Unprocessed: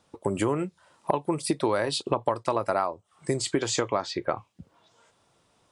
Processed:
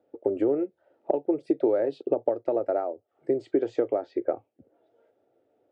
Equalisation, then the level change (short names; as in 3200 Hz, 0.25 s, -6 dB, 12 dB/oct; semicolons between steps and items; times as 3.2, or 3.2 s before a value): Butterworth band-pass 430 Hz, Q 0.53; fixed phaser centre 430 Hz, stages 4; +4.0 dB